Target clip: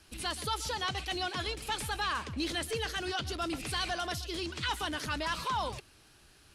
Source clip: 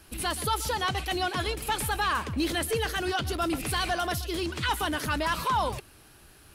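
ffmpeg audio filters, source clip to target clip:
-filter_complex "[0:a]lowpass=10k,acrossover=split=830|6300[a][b][c];[b]crystalizer=i=2.5:c=0[d];[a][d][c]amix=inputs=3:normalize=0,volume=-7dB"

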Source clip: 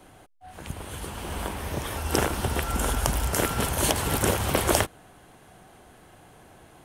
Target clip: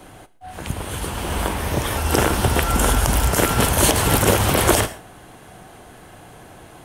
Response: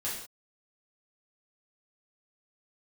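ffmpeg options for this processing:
-filter_complex "[0:a]asplit=2[a][b];[1:a]atrim=start_sample=2205,afade=t=out:st=0.22:d=0.01,atrim=end_sample=10143[c];[b][c]afir=irnorm=-1:irlink=0,volume=-16.5dB[d];[a][d]amix=inputs=2:normalize=0,alimiter=level_in=10dB:limit=-1dB:release=50:level=0:latency=1,volume=-2dB"

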